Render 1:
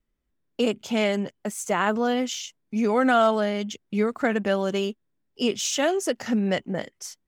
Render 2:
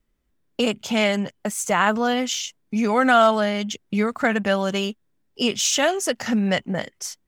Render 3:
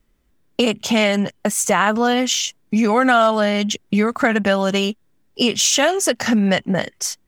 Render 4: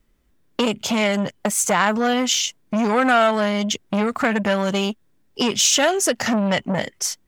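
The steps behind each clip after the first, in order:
dynamic bell 360 Hz, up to -8 dB, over -37 dBFS, Q 1.1; trim +6 dB
compression 2:1, threshold -24 dBFS, peak gain reduction 7.5 dB; trim +8 dB
transformer saturation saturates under 1.2 kHz

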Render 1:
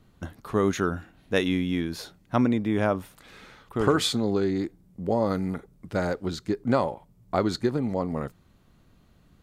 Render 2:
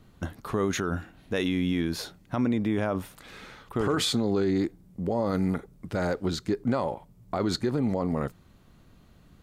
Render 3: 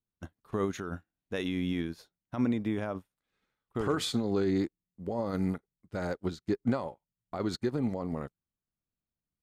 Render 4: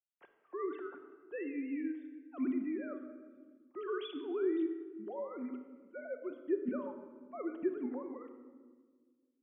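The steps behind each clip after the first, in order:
peak limiter -20.5 dBFS, peak gain reduction 11 dB; trim +3 dB
upward expansion 2.5:1, over -48 dBFS
formants replaced by sine waves; reverberation RT60 1.6 s, pre-delay 6 ms, DRR 6 dB; trim -7.5 dB

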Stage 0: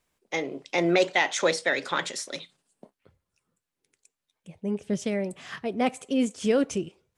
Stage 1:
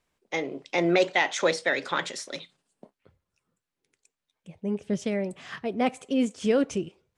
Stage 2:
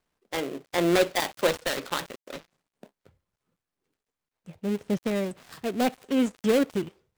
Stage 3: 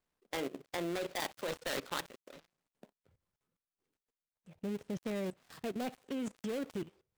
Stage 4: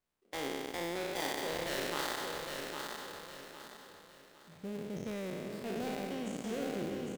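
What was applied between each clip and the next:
treble shelf 9.2 kHz -10.5 dB
dead-time distortion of 0.23 ms; trim +1 dB
level held to a coarse grid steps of 17 dB; trim -2 dB
spectral sustain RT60 2.78 s; feedback delay 806 ms, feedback 34%, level -5 dB; trim -4.5 dB

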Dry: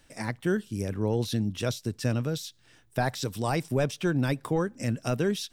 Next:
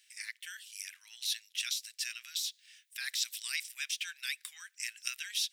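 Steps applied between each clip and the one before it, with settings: steep high-pass 2 kHz 36 dB/octave; level rider gain up to 4 dB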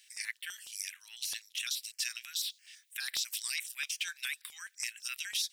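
peak limiter -26.5 dBFS, peak gain reduction 9.5 dB; step-sequenced notch 12 Hz 940–6400 Hz; trim +5 dB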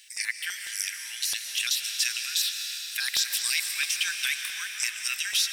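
reverberation RT60 4.8 s, pre-delay 100 ms, DRR 4 dB; trim +8.5 dB

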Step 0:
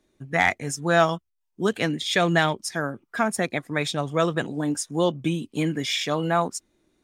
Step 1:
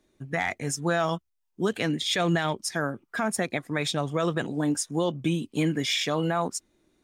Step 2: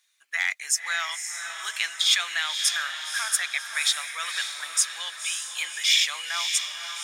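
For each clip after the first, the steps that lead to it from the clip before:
peak limiter -15 dBFS, peak gain reduction 9 dB
Bessel high-pass 2.2 kHz, order 4; echo that smears into a reverb 548 ms, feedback 47%, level -6.5 dB; trim +8.5 dB

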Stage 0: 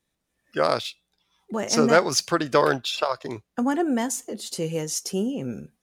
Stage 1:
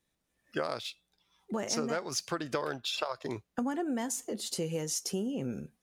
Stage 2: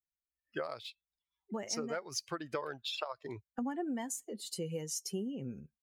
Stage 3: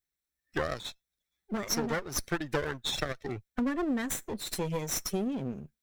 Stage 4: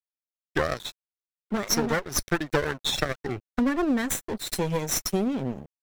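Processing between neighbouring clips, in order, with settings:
compression 8:1, threshold -27 dBFS, peak gain reduction 15.5 dB; trim -2.5 dB
expander on every frequency bin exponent 1.5; trim -2.5 dB
comb filter that takes the minimum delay 0.52 ms; trim +7.5 dB
crossover distortion -46.5 dBFS; trim +7 dB

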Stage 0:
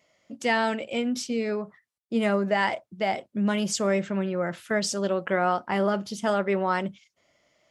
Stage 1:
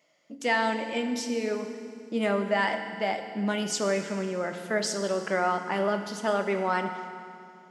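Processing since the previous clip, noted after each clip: high-pass 180 Hz 12 dB/octave; FDN reverb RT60 2.4 s, low-frequency decay 1.45×, high-frequency decay 0.9×, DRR 6 dB; trim -2 dB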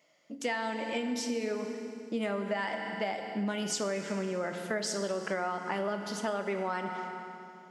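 compression, threshold -29 dBFS, peak gain reduction 9.5 dB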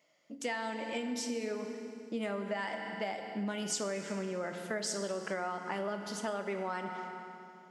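dynamic bell 8.4 kHz, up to +4 dB, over -53 dBFS, Q 1.3; trim -3.5 dB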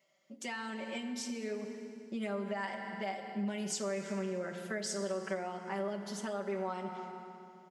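comb 5.2 ms, depth 99%; trim -5 dB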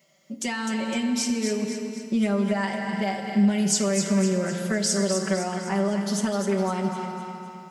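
tone controls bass +11 dB, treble +6 dB; thinning echo 254 ms, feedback 49%, high-pass 940 Hz, level -6.5 dB; trim +9 dB

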